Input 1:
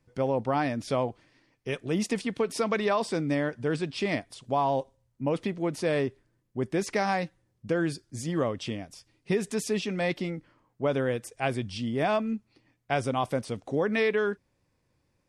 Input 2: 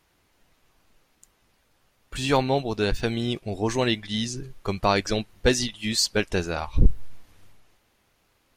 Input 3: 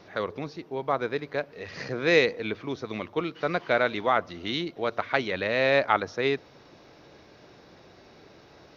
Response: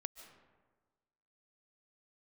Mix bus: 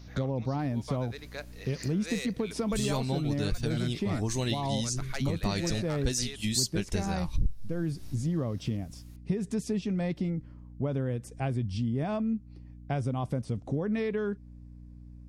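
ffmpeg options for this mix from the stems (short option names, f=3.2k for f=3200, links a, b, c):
-filter_complex "[0:a]lowpass=f=1.1k:p=1,volume=0dB[a];[1:a]adelay=600,volume=-4.5dB[b];[2:a]highpass=f=950:p=1,asoftclip=type=tanh:threshold=-19.5dB,volume=-7dB[c];[a][b][c]amix=inputs=3:normalize=0,bass=f=250:g=13,treble=f=4k:g=15,aeval=exprs='val(0)+0.00501*(sin(2*PI*60*n/s)+sin(2*PI*2*60*n/s)/2+sin(2*PI*3*60*n/s)/3+sin(2*PI*4*60*n/s)/4+sin(2*PI*5*60*n/s)/5)':c=same,acompressor=threshold=-29dB:ratio=3"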